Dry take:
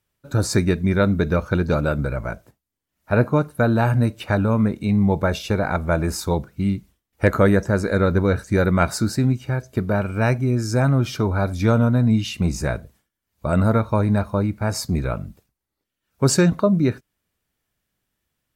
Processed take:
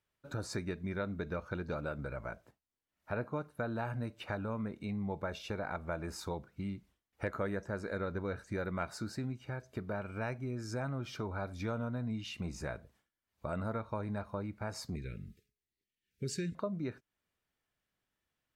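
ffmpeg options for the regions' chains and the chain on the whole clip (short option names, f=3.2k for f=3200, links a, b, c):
-filter_complex "[0:a]asettb=1/sr,asplit=3[a][b][c];[a]atrim=end=14.964[d];[b]atrim=start=14.96:end=16.55,asetpts=PTS-STARTPTS,afade=t=in:d=0.004:c=qsin,afade=t=out:st=1.586:d=0.004:c=qsin,asuperstop=centerf=880:order=8:qfactor=0.64,equalizer=f=290:t=o:w=0.24:g=-7.5,bandreject=f=421.8:t=h:w=4,bandreject=f=843.6:t=h:w=4,bandreject=f=1.2654k:t=h:w=4,bandreject=f=1.6872k:t=h:w=4,bandreject=f=2.109k:t=h:w=4,bandreject=f=2.5308k:t=h:w=4,bandreject=f=2.9526k:t=h:w=4,bandreject=f=3.3744k:t=h:w=4,bandreject=f=3.7962k:t=h:w=4,bandreject=f=4.218k:t=h:w=4,bandreject=f=4.6398k:t=h:w=4,bandreject=f=5.0616k:t=h:w=4,bandreject=f=5.4834k:t=h:w=4,bandreject=f=5.9052k:t=h:w=4,bandreject=f=6.327k:t=h:w=4,bandreject=f=6.7488k:t=h:w=4,bandreject=f=7.1706k:t=h:w=4,bandreject=f=7.5924k:t=h:w=4,bandreject=f=8.0142k:t=h:w=4,bandreject=f=8.436k:t=h:w=4,bandreject=f=8.8578k:t=h:w=4[e];[c]atrim=start=16.546[f];[d][e]acrossfade=d=0.004:c1=hsin:c2=qsin[g];[g][f]acrossfade=d=0.004:c1=qsin:c2=hsin,lowpass=f=3.3k:p=1,lowshelf=f=360:g=-7.5,acompressor=threshold=-37dB:ratio=2,volume=-5dB"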